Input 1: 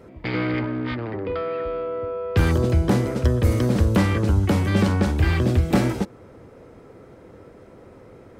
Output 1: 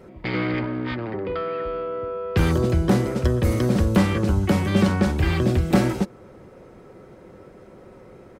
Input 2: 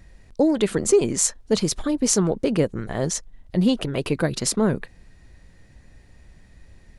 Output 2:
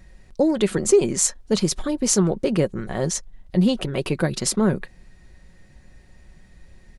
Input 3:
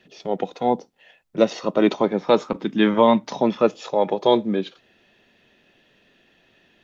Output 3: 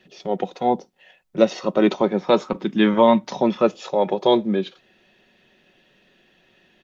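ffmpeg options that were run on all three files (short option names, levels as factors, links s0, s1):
-af "aecho=1:1:5.4:0.33"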